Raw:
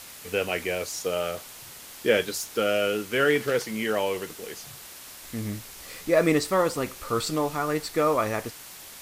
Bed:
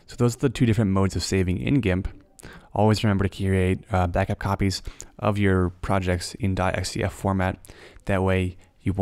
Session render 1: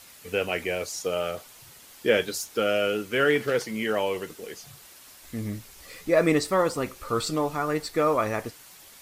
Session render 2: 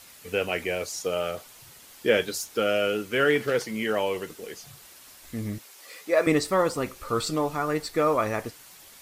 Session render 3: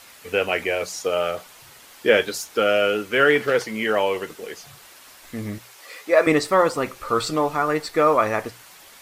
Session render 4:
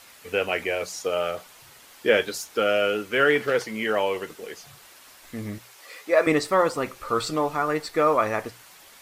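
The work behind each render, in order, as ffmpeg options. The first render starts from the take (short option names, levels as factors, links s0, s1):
-af "afftdn=nr=7:nf=-44"
-filter_complex "[0:a]asettb=1/sr,asplit=3[s0][s1][s2];[s0]atrim=end=5.584[s3];[s1]atrim=start=5.58:end=6.27,asetpts=PTS-STARTPTS,afade=t=in:d=0.004:c=qsin,afade=t=out:st=0.686:d=0.004:c=qsin,highpass=420[s4];[s2]atrim=start=6.266[s5];[s3][s4]acrossfade=d=0.004:c1=hsin:c2=qsin[s6];[s6][s5]acrossfade=d=0.004:c1=qsin:c2=hsin"
-af "equalizer=f=1200:w=0.32:g=7,bandreject=f=60:t=h:w=6,bandreject=f=120:t=h:w=6,bandreject=f=180:t=h:w=6"
-af "volume=0.708"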